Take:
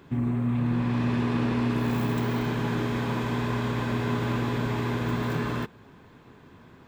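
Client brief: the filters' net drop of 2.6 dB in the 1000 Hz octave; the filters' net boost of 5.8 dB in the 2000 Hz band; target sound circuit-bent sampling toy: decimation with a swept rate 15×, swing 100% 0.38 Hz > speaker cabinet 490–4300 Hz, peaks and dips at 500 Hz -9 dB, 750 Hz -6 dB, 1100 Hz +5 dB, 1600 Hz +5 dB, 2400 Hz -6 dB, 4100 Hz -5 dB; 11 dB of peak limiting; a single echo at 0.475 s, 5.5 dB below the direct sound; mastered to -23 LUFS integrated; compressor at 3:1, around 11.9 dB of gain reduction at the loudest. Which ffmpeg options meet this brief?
-af "equalizer=f=1k:t=o:g=-7,equalizer=f=2k:t=o:g=7.5,acompressor=threshold=-39dB:ratio=3,alimiter=level_in=13.5dB:limit=-24dB:level=0:latency=1,volume=-13.5dB,aecho=1:1:475:0.531,acrusher=samples=15:mix=1:aa=0.000001:lfo=1:lforange=15:lforate=0.38,highpass=490,equalizer=f=500:t=q:w=4:g=-9,equalizer=f=750:t=q:w=4:g=-6,equalizer=f=1.1k:t=q:w=4:g=5,equalizer=f=1.6k:t=q:w=4:g=5,equalizer=f=2.4k:t=q:w=4:g=-6,equalizer=f=4.1k:t=q:w=4:g=-5,lowpass=f=4.3k:w=0.5412,lowpass=f=4.3k:w=1.3066,volume=28dB"

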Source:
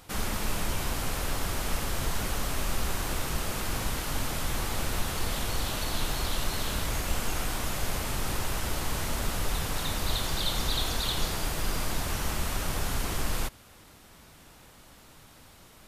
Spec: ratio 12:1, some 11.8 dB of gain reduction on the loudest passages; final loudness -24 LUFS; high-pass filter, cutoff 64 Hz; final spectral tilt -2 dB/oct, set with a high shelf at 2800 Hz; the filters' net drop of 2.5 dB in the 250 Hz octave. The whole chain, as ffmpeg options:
-af "highpass=64,equalizer=f=250:t=o:g=-3.5,highshelf=f=2.8k:g=6,acompressor=threshold=-35dB:ratio=12,volume=12.5dB"

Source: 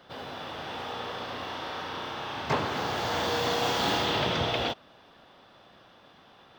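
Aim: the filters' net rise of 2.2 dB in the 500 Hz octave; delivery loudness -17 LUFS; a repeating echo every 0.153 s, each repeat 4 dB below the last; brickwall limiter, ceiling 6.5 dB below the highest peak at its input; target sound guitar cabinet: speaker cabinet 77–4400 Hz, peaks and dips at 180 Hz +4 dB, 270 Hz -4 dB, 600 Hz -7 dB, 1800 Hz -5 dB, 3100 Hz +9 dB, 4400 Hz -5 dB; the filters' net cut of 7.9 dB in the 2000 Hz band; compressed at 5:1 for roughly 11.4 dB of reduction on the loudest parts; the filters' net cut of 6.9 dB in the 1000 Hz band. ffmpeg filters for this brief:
-af "equalizer=f=500:t=o:g=8,equalizer=f=1k:t=o:g=-9,equalizer=f=2k:t=o:g=-8.5,acompressor=threshold=-36dB:ratio=5,alimiter=level_in=7dB:limit=-24dB:level=0:latency=1,volume=-7dB,highpass=77,equalizer=f=180:t=q:w=4:g=4,equalizer=f=270:t=q:w=4:g=-4,equalizer=f=600:t=q:w=4:g=-7,equalizer=f=1.8k:t=q:w=4:g=-5,equalizer=f=3.1k:t=q:w=4:g=9,equalizer=f=4.4k:t=q:w=4:g=-5,lowpass=f=4.4k:w=0.5412,lowpass=f=4.4k:w=1.3066,aecho=1:1:153|306|459|612|765|918|1071|1224|1377:0.631|0.398|0.25|0.158|0.0994|0.0626|0.0394|0.0249|0.0157,volume=22dB"

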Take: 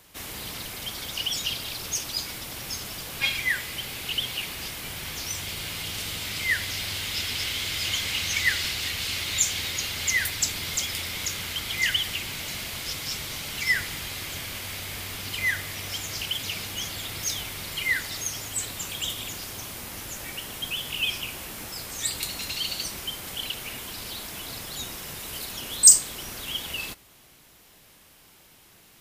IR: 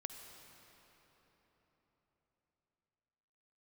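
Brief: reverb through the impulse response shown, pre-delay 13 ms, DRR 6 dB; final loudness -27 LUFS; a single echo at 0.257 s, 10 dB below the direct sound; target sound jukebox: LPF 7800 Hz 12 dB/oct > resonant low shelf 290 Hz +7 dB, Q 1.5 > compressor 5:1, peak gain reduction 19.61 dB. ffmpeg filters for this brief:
-filter_complex "[0:a]aecho=1:1:257:0.316,asplit=2[a][b];[1:a]atrim=start_sample=2205,adelay=13[c];[b][c]afir=irnorm=-1:irlink=0,volume=-3.5dB[d];[a][d]amix=inputs=2:normalize=0,lowpass=7.8k,lowshelf=f=290:t=q:w=1.5:g=7,acompressor=threshold=-32dB:ratio=5,volume=7dB"

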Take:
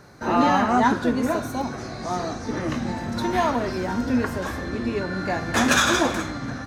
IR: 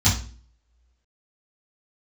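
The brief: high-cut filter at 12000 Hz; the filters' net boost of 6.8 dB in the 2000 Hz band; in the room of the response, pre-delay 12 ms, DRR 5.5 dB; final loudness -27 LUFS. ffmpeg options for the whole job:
-filter_complex "[0:a]lowpass=12k,equalizer=f=2k:t=o:g=9,asplit=2[a][b];[1:a]atrim=start_sample=2205,adelay=12[c];[b][c]afir=irnorm=-1:irlink=0,volume=-21dB[d];[a][d]amix=inputs=2:normalize=0,volume=-9dB"

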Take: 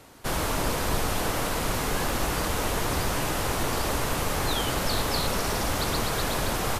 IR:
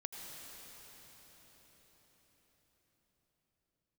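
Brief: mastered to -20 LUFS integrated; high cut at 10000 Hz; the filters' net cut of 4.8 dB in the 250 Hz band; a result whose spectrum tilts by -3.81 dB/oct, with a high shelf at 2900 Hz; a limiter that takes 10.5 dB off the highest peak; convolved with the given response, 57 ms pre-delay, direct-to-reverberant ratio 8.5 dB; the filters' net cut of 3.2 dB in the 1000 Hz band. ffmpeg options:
-filter_complex "[0:a]lowpass=10k,equalizer=f=250:t=o:g=-6.5,equalizer=f=1k:t=o:g=-3,highshelf=f=2.9k:g=-5,alimiter=level_in=0.5dB:limit=-24dB:level=0:latency=1,volume=-0.5dB,asplit=2[a][b];[1:a]atrim=start_sample=2205,adelay=57[c];[b][c]afir=irnorm=-1:irlink=0,volume=-7dB[d];[a][d]amix=inputs=2:normalize=0,volume=14dB"

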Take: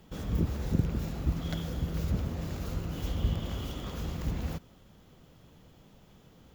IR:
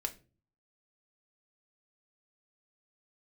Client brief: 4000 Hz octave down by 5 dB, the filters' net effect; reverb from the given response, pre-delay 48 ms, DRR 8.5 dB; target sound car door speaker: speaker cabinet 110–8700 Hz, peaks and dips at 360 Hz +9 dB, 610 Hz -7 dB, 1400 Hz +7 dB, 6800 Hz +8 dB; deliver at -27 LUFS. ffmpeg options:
-filter_complex "[0:a]equalizer=f=4k:t=o:g=-7.5,asplit=2[a][b];[1:a]atrim=start_sample=2205,adelay=48[c];[b][c]afir=irnorm=-1:irlink=0,volume=-9dB[d];[a][d]amix=inputs=2:normalize=0,highpass=110,equalizer=f=360:t=q:w=4:g=9,equalizer=f=610:t=q:w=4:g=-7,equalizer=f=1.4k:t=q:w=4:g=7,equalizer=f=6.8k:t=q:w=4:g=8,lowpass=f=8.7k:w=0.5412,lowpass=f=8.7k:w=1.3066,volume=8dB"

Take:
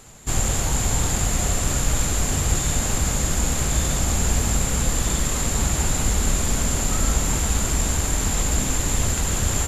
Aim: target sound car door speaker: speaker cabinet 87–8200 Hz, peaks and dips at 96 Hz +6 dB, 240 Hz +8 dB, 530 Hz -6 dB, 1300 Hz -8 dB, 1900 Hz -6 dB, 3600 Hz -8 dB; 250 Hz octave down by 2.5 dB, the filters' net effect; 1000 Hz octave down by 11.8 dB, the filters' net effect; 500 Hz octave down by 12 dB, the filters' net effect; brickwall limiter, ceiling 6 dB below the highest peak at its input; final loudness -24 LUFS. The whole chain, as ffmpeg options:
-af "equalizer=f=250:t=o:g=-6,equalizer=f=500:t=o:g=-9,equalizer=f=1k:t=o:g=-8.5,alimiter=limit=-14dB:level=0:latency=1,highpass=87,equalizer=f=96:t=q:w=4:g=6,equalizer=f=240:t=q:w=4:g=8,equalizer=f=530:t=q:w=4:g=-6,equalizer=f=1.3k:t=q:w=4:g=-8,equalizer=f=1.9k:t=q:w=4:g=-6,equalizer=f=3.6k:t=q:w=4:g=-8,lowpass=f=8.2k:w=0.5412,lowpass=f=8.2k:w=1.3066,volume=2dB"

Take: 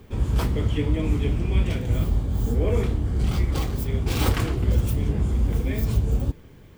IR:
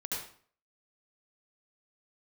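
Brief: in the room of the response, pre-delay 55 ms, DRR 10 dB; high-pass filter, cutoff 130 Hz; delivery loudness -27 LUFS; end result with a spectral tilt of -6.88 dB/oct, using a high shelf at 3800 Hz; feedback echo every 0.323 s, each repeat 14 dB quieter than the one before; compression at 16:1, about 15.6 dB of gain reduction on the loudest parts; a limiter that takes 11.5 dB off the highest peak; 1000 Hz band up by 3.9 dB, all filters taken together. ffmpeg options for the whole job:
-filter_complex "[0:a]highpass=130,equalizer=f=1k:t=o:g=5.5,highshelf=f=3.8k:g=-8.5,acompressor=threshold=-36dB:ratio=16,alimiter=level_in=15dB:limit=-24dB:level=0:latency=1,volume=-15dB,aecho=1:1:323|646:0.2|0.0399,asplit=2[a][b];[1:a]atrim=start_sample=2205,adelay=55[c];[b][c]afir=irnorm=-1:irlink=0,volume=-12.5dB[d];[a][d]amix=inputs=2:normalize=0,volume=19.5dB"

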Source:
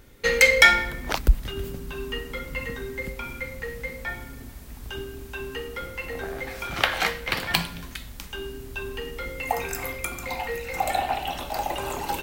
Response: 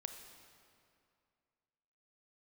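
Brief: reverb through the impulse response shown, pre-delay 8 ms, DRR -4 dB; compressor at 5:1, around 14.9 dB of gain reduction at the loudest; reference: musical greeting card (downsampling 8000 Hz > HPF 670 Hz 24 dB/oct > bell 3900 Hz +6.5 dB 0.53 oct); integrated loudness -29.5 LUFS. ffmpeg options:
-filter_complex "[0:a]acompressor=threshold=-27dB:ratio=5,asplit=2[a][b];[1:a]atrim=start_sample=2205,adelay=8[c];[b][c]afir=irnorm=-1:irlink=0,volume=7dB[d];[a][d]amix=inputs=2:normalize=0,aresample=8000,aresample=44100,highpass=f=670:w=0.5412,highpass=f=670:w=1.3066,equalizer=f=3.9k:t=o:w=0.53:g=6.5,volume=-1dB"

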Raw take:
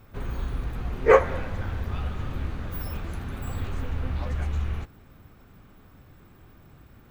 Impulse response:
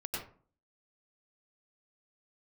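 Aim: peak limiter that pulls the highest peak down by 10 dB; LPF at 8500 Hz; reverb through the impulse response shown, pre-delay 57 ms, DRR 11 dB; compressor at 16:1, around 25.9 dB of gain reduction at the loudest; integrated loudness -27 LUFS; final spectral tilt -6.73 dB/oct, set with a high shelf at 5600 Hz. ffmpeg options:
-filter_complex "[0:a]lowpass=8.5k,highshelf=f=5.6k:g=-5.5,acompressor=threshold=-37dB:ratio=16,alimiter=level_in=14.5dB:limit=-24dB:level=0:latency=1,volume=-14.5dB,asplit=2[a][b];[1:a]atrim=start_sample=2205,adelay=57[c];[b][c]afir=irnorm=-1:irlink=0,volume=-13.5dB[d];[a][d]amix=inputs=2:normalize=0,volume=22dB"

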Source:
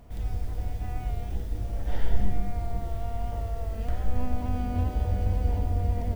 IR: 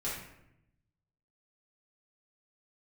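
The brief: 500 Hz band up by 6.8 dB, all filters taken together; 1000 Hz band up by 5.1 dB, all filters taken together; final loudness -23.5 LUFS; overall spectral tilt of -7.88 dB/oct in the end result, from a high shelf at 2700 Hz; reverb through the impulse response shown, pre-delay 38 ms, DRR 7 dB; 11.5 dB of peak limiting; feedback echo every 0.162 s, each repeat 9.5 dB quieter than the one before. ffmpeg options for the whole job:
-filter_complex "[0:a]equalizer=f=500:t=o:g=7.5,equalizer=f=1k:t=o:g=4,highshelf=f=2.7k:g=-7,alimiter=limit=-20.5dB:level=0:latency=1,aecho=1:1:162|324|486|648:0.335|0.111|0.0365|0.012,asplit=2[a][b];[1:a]atrim=start_sample=2205,adelay=38[c];[b][c]afir=irnorm=-1:irlink=0,volume=-11dB[d];[a][d]amix=inputs=2:normalize=0,volume=6.5dB"

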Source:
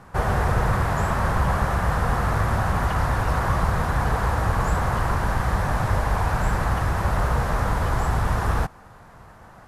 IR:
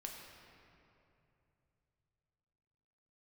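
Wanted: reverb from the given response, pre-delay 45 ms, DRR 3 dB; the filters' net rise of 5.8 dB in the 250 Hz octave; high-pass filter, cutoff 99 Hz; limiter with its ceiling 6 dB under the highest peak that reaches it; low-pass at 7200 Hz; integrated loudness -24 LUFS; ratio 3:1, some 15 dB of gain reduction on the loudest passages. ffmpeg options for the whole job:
-filter_complex "[0:a]highpass=99,lowpass=7.2k,equalizer=f=250:t=o:g=9,acompressor=threshold=-40dB:ratio=3,alimiter=level_in=6dB:limit=-24dB:level=0:latency=1,volume=-6dB,asplit=2[a][b];[1:a]atrim=start_sample=2205,adelay=45[c];[b][c]afir=irnorm=-1:irlink=0,volume=-0.5dB[d];[a][d]amix=inputs=2:normalize=0,volume=14dB"

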